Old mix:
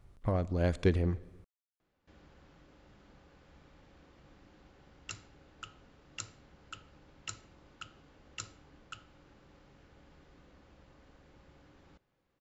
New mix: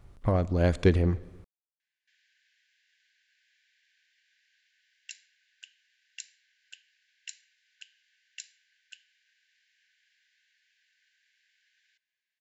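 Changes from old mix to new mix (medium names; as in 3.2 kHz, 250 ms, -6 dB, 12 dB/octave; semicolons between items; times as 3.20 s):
speech +5.5 dB; background: add brick-wall FIR high-pass 1.5 kHz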